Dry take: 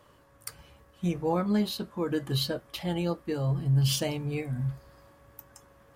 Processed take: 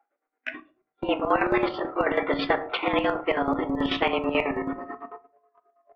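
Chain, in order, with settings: pitch bend over the whole clip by +2.5 st ending unshifted; in parallel at -3 dB: gain riding 0.5 s; on the sum: mistuned SSB +130 Hz 160–2400 Hz; square tremolo 9.2 Hz, depth 65%, duty 50%; spectral noise reduction 18 dB; gate -54 dBFS, range -26 dB; on a send at -13 dB: reverberation RT60 0.40 s, pre-delay 4 ms; on the sum: spectrum-flattening compressor 2:1; trim +5 dB

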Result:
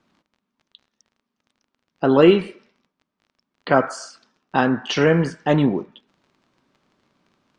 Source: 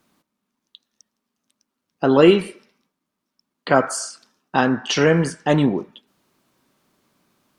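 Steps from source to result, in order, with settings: treble shelf 8.5 kHz +7.5 dB; crackle 28 per s -41 dBFS; distance through air 150 m

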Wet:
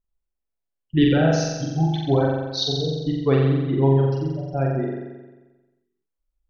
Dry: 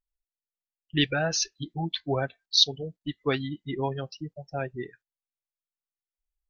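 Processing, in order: tilt shelf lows +8.5 dB, about 1.1 kHz; flutter echo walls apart 7.6 m, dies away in 1.2 s

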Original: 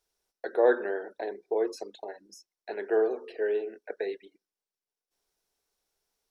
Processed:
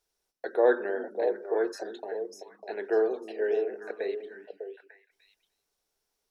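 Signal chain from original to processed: repeats whose band climbs or falls 299 ms, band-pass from 200 Hz, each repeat 1.4 oct, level -3 dB

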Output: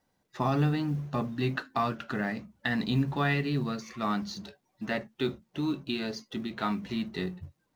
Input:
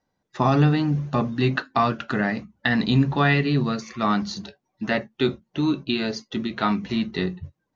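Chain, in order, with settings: companding laws mixed up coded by mu; trim -8.5 dB

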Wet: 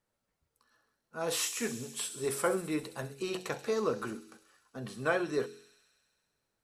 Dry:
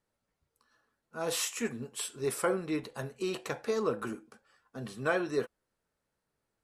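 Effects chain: de-hum 46 Hz, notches 10; on a send: feedback echo behind a high-pass 66 ms, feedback 79%, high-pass 4.2 kHz, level -9 dB

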